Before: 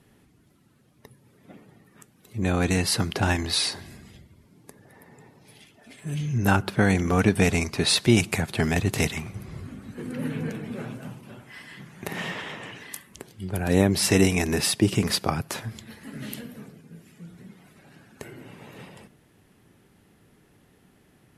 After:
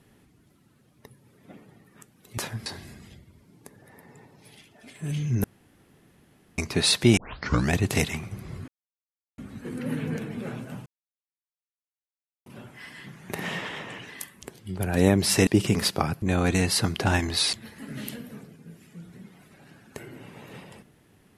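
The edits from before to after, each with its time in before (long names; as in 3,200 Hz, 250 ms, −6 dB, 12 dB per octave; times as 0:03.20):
0:02.38–0:03.69: swap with 0:15.50–0:15.78
0:06.47–0:07.61: fill with room tone
0:08.20: tape start 0.55 s
0:09.71: splice in silence 0.70 s
0:11.19: splice in silence 1.60 s
0:14.20–0:14.75: remove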